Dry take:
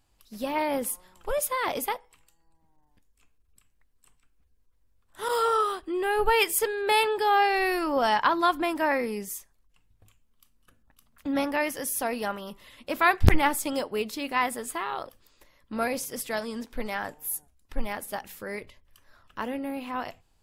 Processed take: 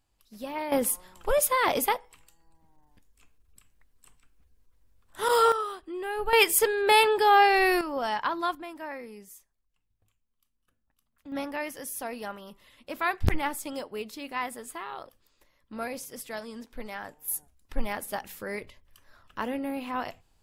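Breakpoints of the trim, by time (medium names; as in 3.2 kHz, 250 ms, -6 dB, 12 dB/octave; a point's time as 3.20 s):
-6 dB
from 0.72 s +4 dB
from 5.52 s -6.5 dB
from 6.33 s +3 dB
from 7.81 s -6 dB
from 8.55 s -13 dB
from 11.32 s -6.5 dB
from 17.28 s +0.5 dB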